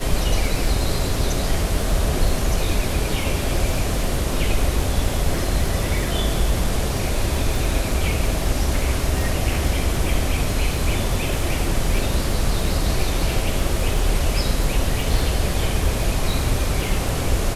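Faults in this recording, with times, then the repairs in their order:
crackle 33 per s -26 dBFS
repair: de-click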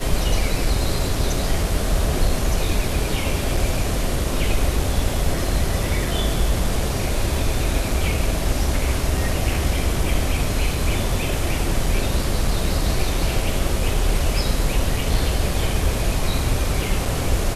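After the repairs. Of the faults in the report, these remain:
nothing left

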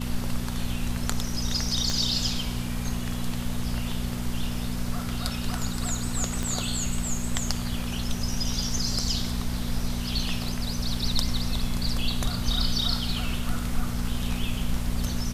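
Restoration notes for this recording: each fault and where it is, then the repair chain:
hum 60 Hz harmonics 4 -32 dBFS
1.90 s: pop -14 dBFS
6.43 s: pop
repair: de-click; de-hum 60 Hz, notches 4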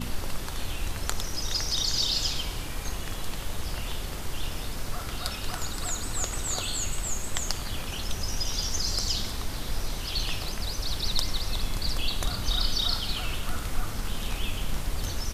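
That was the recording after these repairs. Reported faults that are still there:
1.90 s: pop
6.43 s: pop

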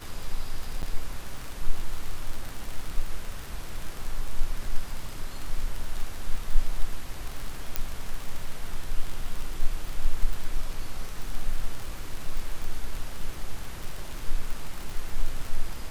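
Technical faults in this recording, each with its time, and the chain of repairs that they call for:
crackle 39 per s -29 dBFS
0.82–0.83 s: dropout 9.6 ms
7.76 s: pop -11 dBFS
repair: de-click; interpolate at 0.82 s, 9.6 ms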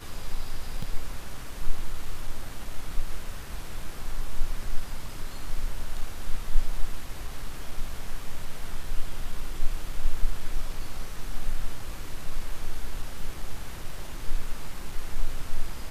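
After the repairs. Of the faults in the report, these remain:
nothing left

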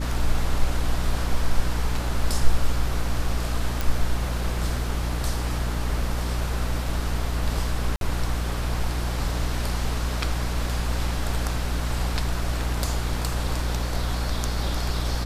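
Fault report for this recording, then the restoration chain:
hum 60 Hz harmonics 5 -27 dBFS
3.81 s: pop
7.96–8.01 s: dropout 52 ms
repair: de-click; de-hum 60 Hz, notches 5; interpolate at 7.96 s, 52 ms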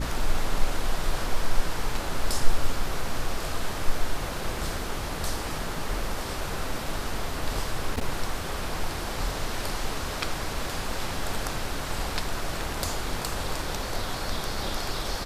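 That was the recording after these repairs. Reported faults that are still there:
nothing left

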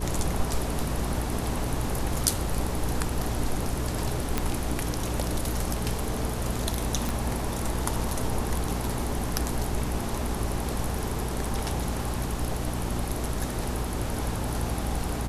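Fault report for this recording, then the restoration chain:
hum 60 Hz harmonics 7 -32 dBFS
4.38 s: pop -10 dBFS
7.09 s: pop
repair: de-click; de-hum 60 Hz, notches 7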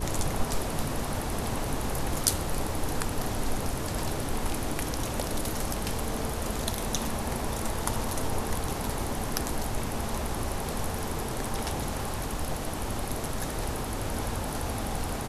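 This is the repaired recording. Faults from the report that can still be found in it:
nothing left

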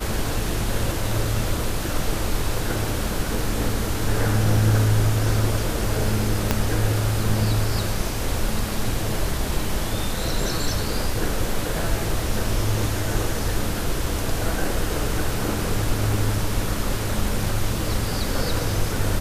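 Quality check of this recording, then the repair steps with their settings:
6.51 s: pop -4 dBFS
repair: de-click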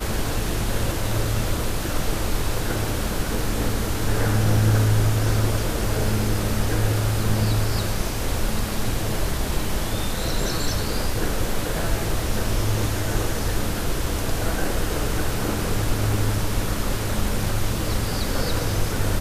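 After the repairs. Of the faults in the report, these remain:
6.51 s: pop

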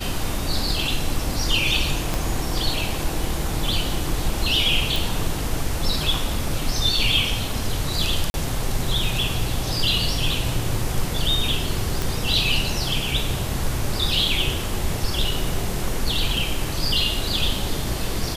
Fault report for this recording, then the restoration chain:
2.14 s: pop
4.96 s: pop
8.30–8.34 s: dropout 41 ms
12.02 s: pop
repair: de-click; interpolate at 8.30 s, 41 ms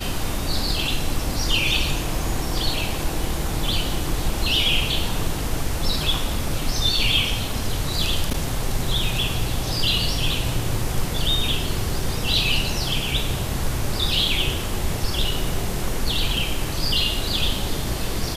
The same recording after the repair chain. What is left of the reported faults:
2.14 s: pop

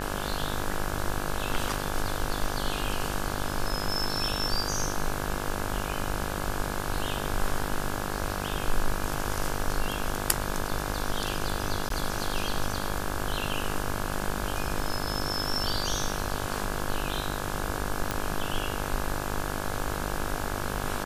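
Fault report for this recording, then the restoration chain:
buzz 50 Hz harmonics 34 -34 dBFS
11.89–11.90 s: dropout 13 ms
18.11 s: pop -11 dBFS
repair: de-click; de-hum 50 Hz, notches 34; interpolate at 11.89 s, 13 ms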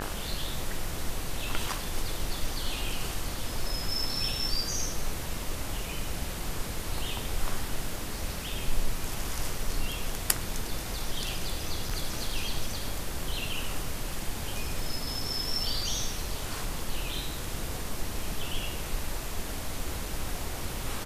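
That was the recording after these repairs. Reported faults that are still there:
nothing left

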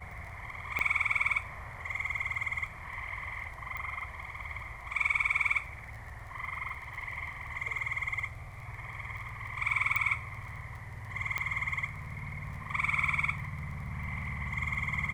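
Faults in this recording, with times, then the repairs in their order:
crackle 20 per s -42 dBFS
0.79 s: pop -18 dBFS
3.77 s: pop -26 dBFS
9.96 s: pop -17 dBFS
11.38 s: pop -18 dBFS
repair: de-click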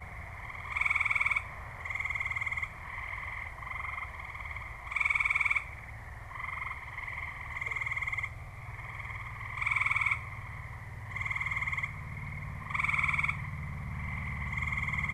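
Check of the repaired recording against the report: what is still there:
nothing left

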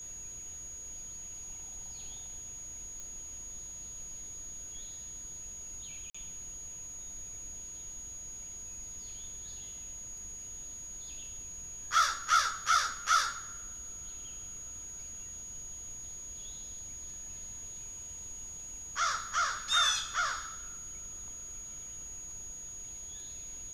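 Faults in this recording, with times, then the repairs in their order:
whine 6.7 kHz -42 dBFS
3.00 s: pop
6.10–6.14 s: dropout 45 ms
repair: de-click; band-stop 6.7 kHz, Q 30; interpolate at 6.10 s, 45 ms

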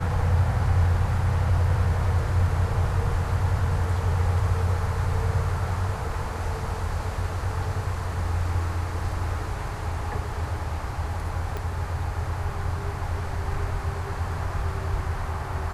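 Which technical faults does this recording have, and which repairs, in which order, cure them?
11.57 s: pop -18 dBFS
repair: de-click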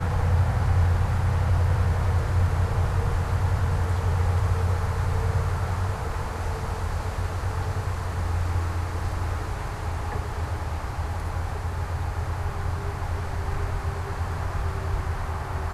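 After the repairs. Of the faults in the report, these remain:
11.57 s: pop

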